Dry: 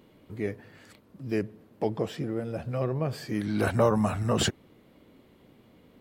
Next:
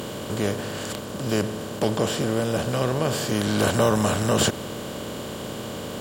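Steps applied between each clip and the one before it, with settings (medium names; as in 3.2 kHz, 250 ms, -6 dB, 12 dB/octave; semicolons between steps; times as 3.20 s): spectral levelling over time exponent 0.4; treble shelf 7.8 kHz +10.5 dB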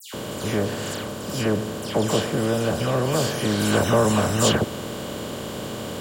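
phase dispersion lows, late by 141 ms, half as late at 2.5 kHz; trim +1.5 dB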